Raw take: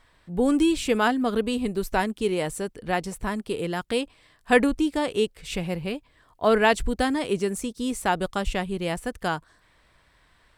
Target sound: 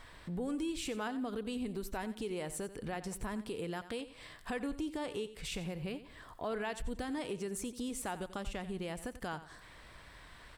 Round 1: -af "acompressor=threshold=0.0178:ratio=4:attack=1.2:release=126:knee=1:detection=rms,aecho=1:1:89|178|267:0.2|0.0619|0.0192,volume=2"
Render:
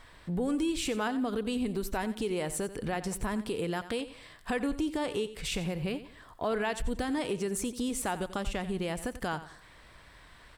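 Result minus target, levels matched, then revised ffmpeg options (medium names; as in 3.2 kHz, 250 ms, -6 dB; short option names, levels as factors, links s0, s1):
compression: peak gain reduction -7 dB
-af "acompressor=threshold=0.00631:ratio=4:attack=1.2:release=126:knee=1:detection=rms,aecho=1:1:89|178|267:0.2|0.0619|0.0192,volume=2"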